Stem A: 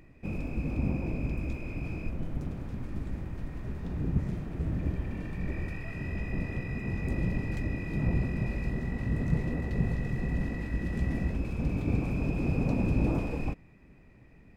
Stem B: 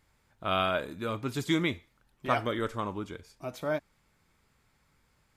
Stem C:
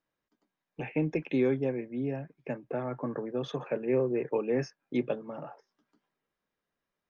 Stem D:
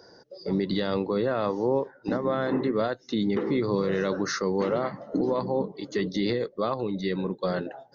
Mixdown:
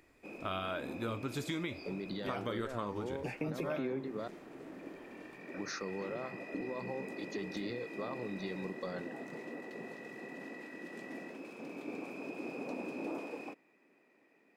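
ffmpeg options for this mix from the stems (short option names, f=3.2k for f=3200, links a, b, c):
-filter_complex "[0:a]highpass=f=300:w=0.5412,highpass=f=300:w=1.3066,volume=-5dB[a];[1:a]volume=2dB,asplit=2[b][c];[2:a]adelay=2450,volume=2.5dB[d];[3:a]acompressor=threshold=-27dB:ratio=6,adelay=1400,volume=-9dB,asplit=3[e][f][g];[e]atrim=end=4.28,asetpts=PTS-STARTPTS,afade=t=out:st=4.276:d=0.004:c=hsin[h];[f]atrim=start=4.28:end=5.54,asetpts=PTS-STARTPTS,volume=0[i];[g]atrim=start=5.54,asetpts=PTS-STARTPTS,afade=t=in:d=0.004:c=hsin[j];[h][i][j]concat=n=3:v=0:a=1[k];[c]apad=whole_len=420862[l];[d][l]sidechaingate=range=-33dB:threshold=-57dB:ratio=16:detection=peak[m];[b][m]amix=inputs=2:normalize=0,flanger=delay=7.1:depth=4.9:regen=76:speed=1.1:shape=triangular,alimiter=limit=-22.5dB:level=0:latency=1:release=232,volume=0dB[n];[a][k][n]amix=inputs=3:normalize=0,acompressor=threshold=-33dB:ratio=6"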